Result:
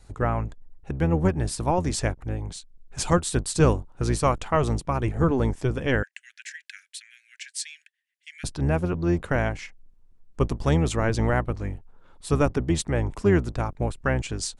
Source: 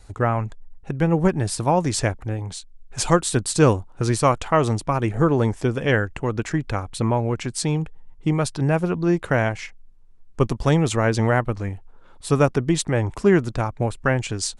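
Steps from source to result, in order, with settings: octaver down 1 oct, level -2 dB; 6.03–8.44 steep high-pass 1600 Hz 96 dB/oct; gain -4.5 dB

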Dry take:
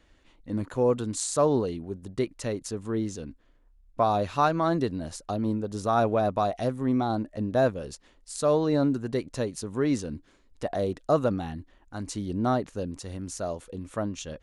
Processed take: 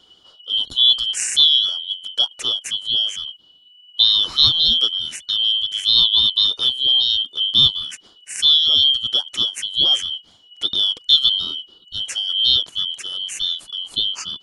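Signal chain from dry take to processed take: four-band scrambler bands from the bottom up 2413; gain +8.5 dB

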